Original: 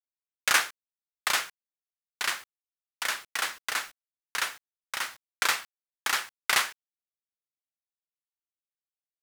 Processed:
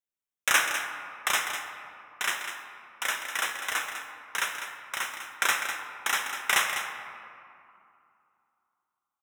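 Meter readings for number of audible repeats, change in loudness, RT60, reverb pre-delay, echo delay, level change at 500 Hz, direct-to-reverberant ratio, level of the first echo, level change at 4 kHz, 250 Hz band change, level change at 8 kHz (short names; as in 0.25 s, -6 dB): 1, 0.0 dB, 2.6 s, 5 ms, 0.2 s, +2.0 dB, 3.0 dB, -9.5 dB, -0.5 dB, +2.0 dB, +1.0 dB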